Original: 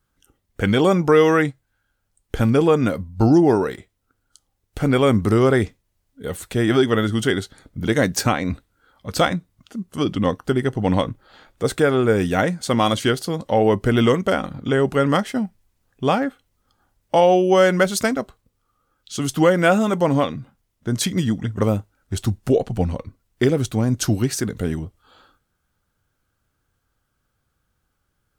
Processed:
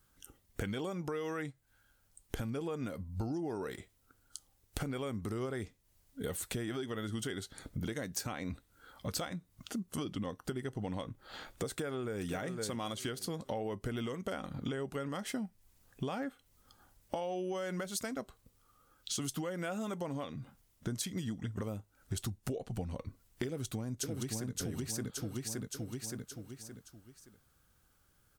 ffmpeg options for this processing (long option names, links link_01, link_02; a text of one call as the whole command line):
ffmpeg -i in.wav -filter_complex "[0:a]asplit=2[link_01][link_02];[link_02]afade=type=in:start_time=11.7:duration=0.01,afade=type=out:start_time=12.25:duration=0.01,aecho=0:1:510|1020|1530:0.316228|0.0632456|0.0126491[link_03];[link_01][link_03]amix=inputs=2:normalize=0,asettb=1/sr,asplit=3[link_04][link_05][link_06];[link_04]atrim=end=15.084[link_07];[link_05]atrim=start=15.08:end=17.82,asetpts=PTS-STARTPTS,afade=type=in:duration=0.004:curve=qsin,afade=type=out:start_time=2.736:duration=0.004:curve=qsin,acompressor=threshold=-18dB:ratio=3:attack=3.2:release=140:knee=1:detection=peak[link_08];[link_06]atrim=start=17.816[link_09];[link_07][link_08]acrossfade=duration=0.004:curve1=hsin:curve2=qsin[link_10];[link_10][link_09]acrossfade=duration=0.004:curve1=qsin:curve2=hsin,asplit=2[link_11][link_12];[link_12]afade=type=in:start_time=23.46:duration=0.01,afade=type=out:start_time=24.54:duration=0.01,aecho=0:1:570|1140|1710|2280|2850:0.891251|0.311938|0.109178|0.0382124|0.0133743[link_13];[link_11][link_13]amix=inputs=2:normalize=0,alimiter=limit=-13dB:level=0:latency=1:release=363,highshelf=frequency=5000:gain=7.5,acompressor=threshold=-36dB:ratio=6" out.wav